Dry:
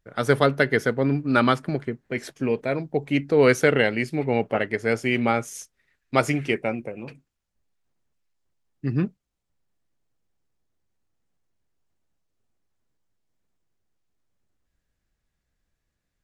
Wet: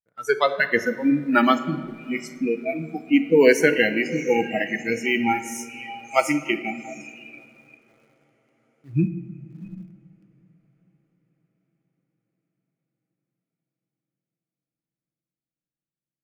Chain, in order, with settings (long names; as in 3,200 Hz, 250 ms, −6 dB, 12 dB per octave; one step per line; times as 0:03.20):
high-pass filter 78 Hz 6 dB per octave
on a send: feedback delay with all-pass diffusion 712 ms, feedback 58%, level −7.5 dB
on the sum: dynamic equaliser 280 Hz, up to +4 dB, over −38 dBFS, Q 5.5
in parallel at −9 dB: bit reduction 5 bits
on the sum: noise reduction from a noise print of the clip's start 27 dB
rectangular room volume 2,500 cubic metres, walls mixed, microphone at 0.65 metres